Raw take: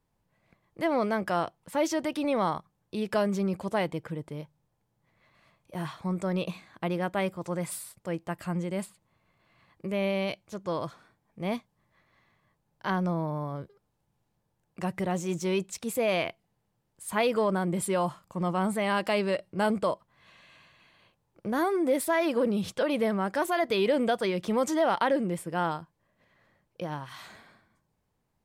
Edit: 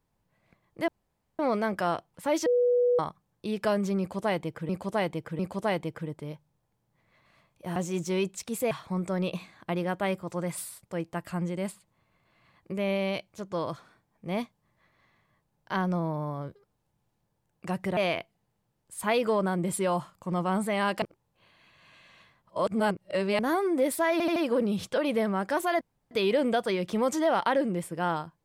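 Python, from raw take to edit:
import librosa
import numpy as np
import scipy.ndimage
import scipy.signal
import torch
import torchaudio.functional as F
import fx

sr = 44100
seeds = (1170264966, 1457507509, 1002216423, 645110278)

y = fx.edit(x, sr, fx.insert_room_tone(at_s=0.88, length_s=0.51),
    fx.bleep(start_s=1.95, length_s=0.53, hz=489.0, db=-20.0),
    fx.repeat(start_s=3.48, length_s=0.7, count=3),
    fx.move(start_s=15.11, length_s=0.95, to_s=5.85),
    fx.reverse_span(start_s=19.11, length_s=2.37),
    fx.stutter(start_s=22.21, slice_s=0.08, count=4),
    fx.insert_room_tone(at_s=23.66, length_s=0.3), tone=tone)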